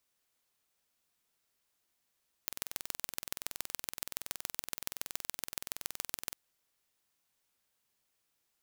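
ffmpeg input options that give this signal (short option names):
-f lavfi -i "aevalsrc='0.473*eq(mod(n,2070),0)*(0.5+0.5*eq(mod(n,6210),0))':d=3.89:s=44100"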